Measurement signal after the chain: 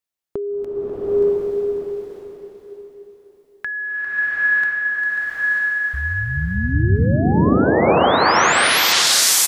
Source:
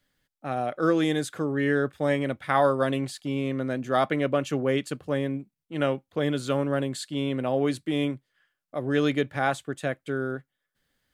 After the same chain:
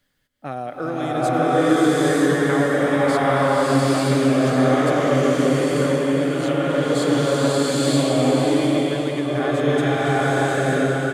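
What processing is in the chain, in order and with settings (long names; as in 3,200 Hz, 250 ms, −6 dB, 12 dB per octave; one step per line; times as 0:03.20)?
downward compressor, threshold −28 dBFS
on a send: repeating echo 541 ms, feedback 32%, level −9 dB
on the sum: dynamic equaliser 2,600 Hz, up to −4 dB, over −46 dBFS, Q 1.9
slow-attack reverb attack 930 ms, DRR −11 dB
level +3.5 dB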